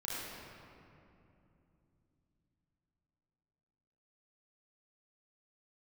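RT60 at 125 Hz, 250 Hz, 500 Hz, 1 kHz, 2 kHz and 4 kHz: 4.8, 4.4, 3.1, 2.6, 2.2, 1.5 s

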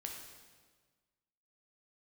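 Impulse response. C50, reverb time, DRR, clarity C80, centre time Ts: 3.5 dB, 1.5 s, 0.5 dB, 5.5 dB, 50 ms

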